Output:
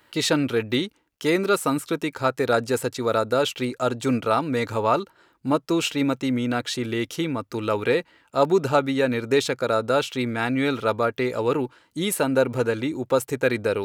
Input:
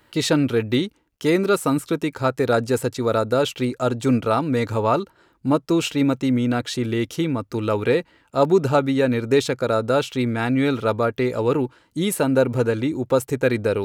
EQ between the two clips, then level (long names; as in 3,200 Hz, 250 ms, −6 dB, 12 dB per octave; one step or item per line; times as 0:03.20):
spectral tilt +2 dB per octave
high-shelf EQ 4,300 Hz −7.5 dB
0.0 dB